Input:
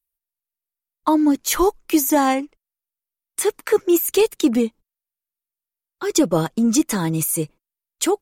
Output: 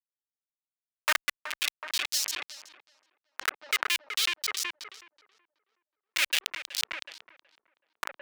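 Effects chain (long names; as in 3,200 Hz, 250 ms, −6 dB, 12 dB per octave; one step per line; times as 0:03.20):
parametric band 580 Hz +13.5 dB 0.42 octaves
comparator with hysteresis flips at −9.5 dBFS
auto-filter high-pass saw up 0.42 Hz 470–6,500 Hz
tape delay 373 ms, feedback 49%, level −10 dB, low-pass 1,500 Hz
level that may fall only so fast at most 54 dB per second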